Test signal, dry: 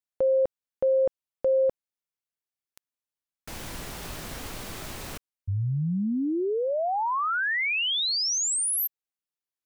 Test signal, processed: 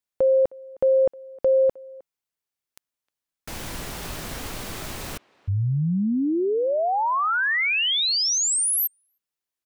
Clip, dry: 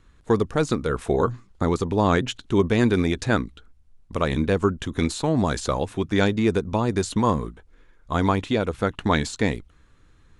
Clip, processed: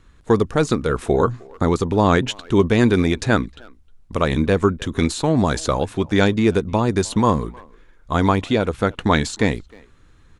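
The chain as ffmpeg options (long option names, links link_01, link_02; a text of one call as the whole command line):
ffmpeg -i in.wav -filter_complex "[0:a]asplit=2[link_01][link_02];[link_02]adelay=310,highpass=300,lowpass=3400,asoftclip=type=hard:threshold=-15.5dB,volume=-23dB[link_03];[link_01][link_03]amix=inputs=2:normalize=0,volume=4dB" out.wav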